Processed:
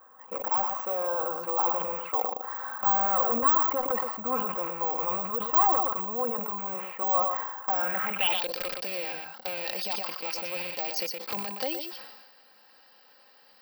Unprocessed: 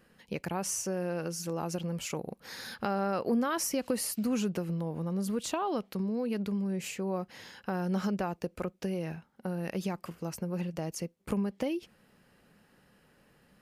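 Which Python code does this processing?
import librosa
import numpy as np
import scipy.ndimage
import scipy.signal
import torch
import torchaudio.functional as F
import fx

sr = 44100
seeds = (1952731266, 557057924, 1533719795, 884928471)

p1 = fx.rattle_buzz(x, sr, strikes_db=-38.0, level_db=-34.0)
p2 = fx.bandpass_edges(p1, sr, low_hz=570.0, high_hz=7500.0)
p3 = (np.mod(10.0 ** (27.0 / 20.0) * p2 + 1.0, 2.0) - 1.0) / 10.0 ** (27.0 / 20.0)
p4 = fx.peak_eq(p3, sr, hz=830.0, db=6.0, octaves=0.8)
p5 = p4 + fx.echo_single(p4, sr, ms=119, db=-11.0, dry=0)
p6 = fx.cheby_harmonics(p5, sr, harmonics=(5,), levels_db=(-16,), full_scale_db=-22.0)
p7 = fx.filter_sweep_lowpass(p6, sr, from_hz=1100.0, to_hz=4700.0, start_s=7.7, end_s=8.53, q=5.4)
p8 = (np.kron(p7[::2], np.eye(2)[0]) * 2)[:len(p7)]
p9 = p8 + 0.48 * np.pad(p8, (int(3.8 * sr / 1000.0), 0))[:len(p8)]
p10 = fx.sustainer(p9, sr, db_per_s=43.0)
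y = p10 * 10.0 ** (-3.0 / 20.0)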